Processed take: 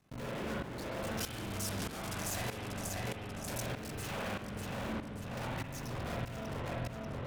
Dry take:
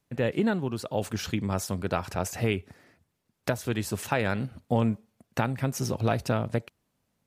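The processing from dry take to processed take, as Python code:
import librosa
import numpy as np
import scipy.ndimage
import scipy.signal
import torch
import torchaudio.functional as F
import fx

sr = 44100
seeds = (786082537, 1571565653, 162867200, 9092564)

y = fx.cycle_switch(x, sr, every=3, mode='muted')
y = fx.high_shelf(y, sr, hz=5600.0, db=-8.5)
y = fx.notch_comb(y, sr, f0_hz=470.0)
y = fx.leveller(y, sr, passes=5)
y = fx.echo_feedback(y, sr, ms=589, feedback_pct=35, wet_db=-16)
y = fx.tube_stage(y, sr, drive_db=42.0, bias=0.65)
y = fx.peak_eq(y, sr, hz=11000.0, db=10.0, octaves=2.1, at=(1.19, 3.61))
y = fx.rev_spring(y, sr, rt60_s=1.1, pass_ms=(41, 50), chirp_ms=80, drr_db=-3.5)
y = fx.tremolo_shape(y, sr, shape='saw_up', hz=1.6, depth_pct=85)
y = fx.env_flatten(y, sr, amount_pct=50)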